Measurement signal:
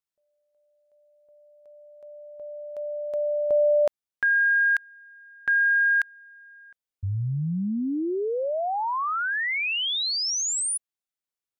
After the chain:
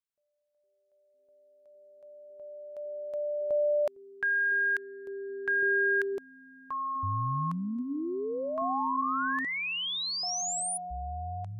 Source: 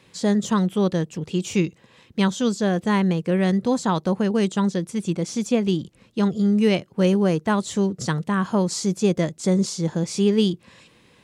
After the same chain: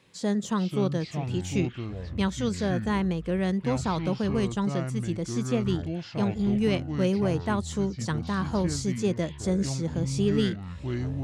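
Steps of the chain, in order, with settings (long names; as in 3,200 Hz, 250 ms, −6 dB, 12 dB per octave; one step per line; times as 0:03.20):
delay with pitch and tempo change per echo 372 ms, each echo −7 semitones, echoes 3, each echo −6 dB
level −6.5 dB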